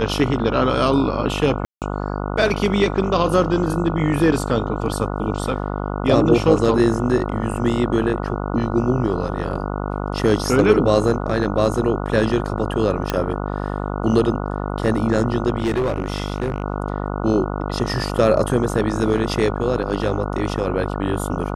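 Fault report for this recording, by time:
mains buzz 50 Hz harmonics 29 −25 dBFS
0:01.65–0:01.82: drop-out 168 ms
0:13.10: click −6 dBFS
0:15.58–0:16.64: clipping −16 dBFS

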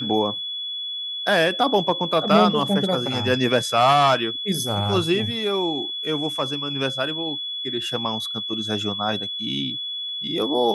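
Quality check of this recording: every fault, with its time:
whistle 3,400 Hz −27 dBFS

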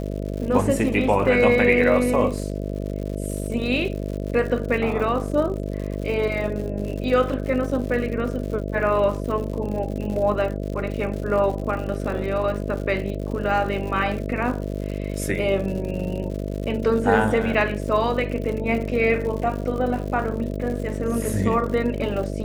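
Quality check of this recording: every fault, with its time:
mains buzz 50 Hz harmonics 13 −28 dBFS
surface crackle 120 per second −31 dBFS

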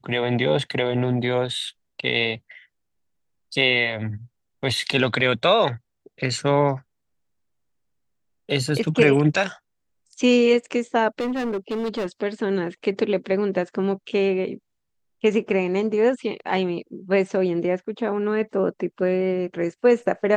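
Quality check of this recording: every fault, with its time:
0:11.20–0:12.06: clipping −22 dBFS

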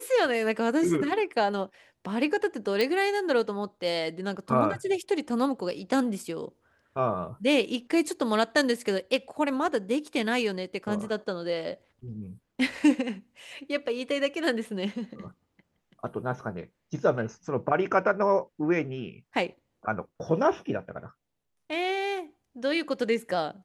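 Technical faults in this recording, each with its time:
0:02.81: click

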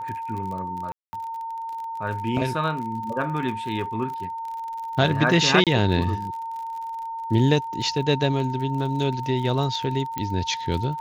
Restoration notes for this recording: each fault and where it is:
surface crackle 47 per second −32 dBFS
whistle 910 Hz −29 dBFS
0:00.92–0:01.13: drop-out 210 ms
0:05.64–0:05.67: drop-out 27 ms
0:10.18: click −13 dBFS

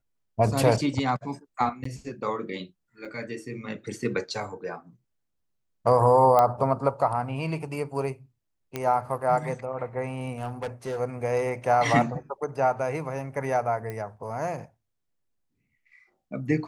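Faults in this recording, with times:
0:01.84–0:01.85: drop-out 14 ms
0:03.05: drop-out 3.8 ms
0:06.39: click −10 dBFS
0:08.76: click −15 dBFS
0:10.32–0:10.99: clipping −27 dBFS
0:13.90: click −22 dBFS

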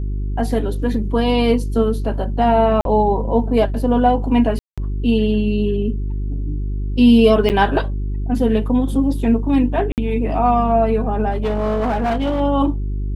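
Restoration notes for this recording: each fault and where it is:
mains hum 50 Hz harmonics 8 −22 dBFS
0:02.81–0:02.85: drop-out 42 ms
0:04.59–0:04.78: drop-out 186 ms
0:07.49–0:07.50: drop-out 8.4 ms
0:09.92–0:09.98: drop-out 58 ms
0:11.31–0:12.41: clipping −15.5 dBFS

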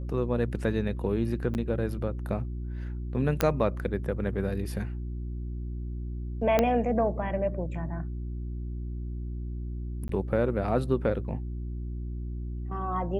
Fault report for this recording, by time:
mains hum 60 Hz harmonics 6 −34 dBFS
0:01.54–0:01.55: drop-out 9.2 ms
0:03.41: click −8 dBFS
0:06.59: click −9 dBFS
0:10.08–0:10.09: drop-out 13 ms

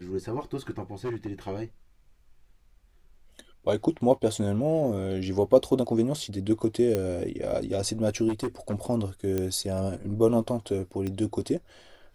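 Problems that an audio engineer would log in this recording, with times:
0:01.05–0:01.28: clipping −27.5 dBFS
0:06.95: click −14 dBFS
0:08.28–0:08.74: clipping −25 dBFS
0:09.38: click −15 dBFS
0:11.07: click −20 dBFS

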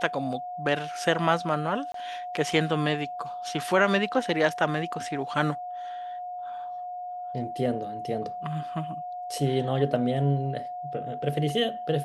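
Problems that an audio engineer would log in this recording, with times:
whistle 720 Hz −33 dBFS
0:01.92–0:01.94: drop-out 23 ms

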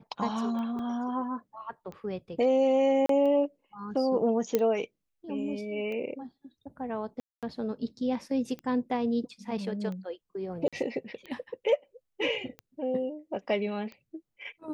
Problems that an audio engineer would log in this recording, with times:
scratch tick 45 rpm −28 dBFS
0:00.79: drop-out 2.7 ms
0:03.06–0:03.09: drop-out 33 ms
0:04.55: click −12 dBFS
0:07.20–0:07.43: drop-out 227 ms
0:10.68–0:10.73: drop-out 46 ms

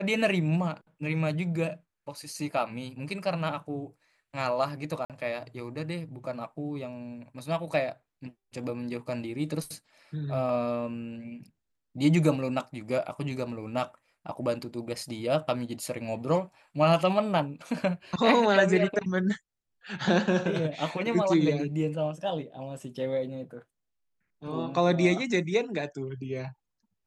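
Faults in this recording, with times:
0:05.05–0:05.10: drop-out 47 ms

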